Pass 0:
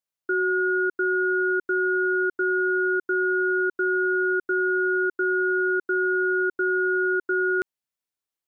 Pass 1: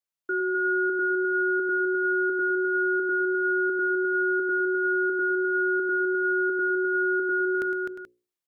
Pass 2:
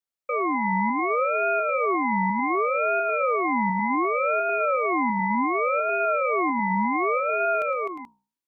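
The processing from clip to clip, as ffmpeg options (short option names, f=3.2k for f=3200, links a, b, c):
-filter_complex "[0:a]bandreject=f=60:t=h:w=6,bandreject=f=120:t=h:w=6,bandreject=f=180:t=h:w=6,bandreject=f=240:t=h:w=6,bandreject=f=300:t=h:w=6,bandreject=f=360:t=h:w=6,bandreject=f=420:t=h:w=6,bandreject=f=480:t=h:w=6,bandreject=f=540:t=h:w=6,asplit=2[a][b];[b]aecho=0:1:110|255|355|431:0.335|0.596|0.237|0.211[c];[a][c]amix=inputs=2:normalize=0,volume=-3dB"
-af "equalizer=f=320:w=1.8:g=8.5,aeval=exprs='val(0)*sin(2*PI*800*n/s+800*0.3/0.67*sin(2*PI*0.67*n/s))':c=same"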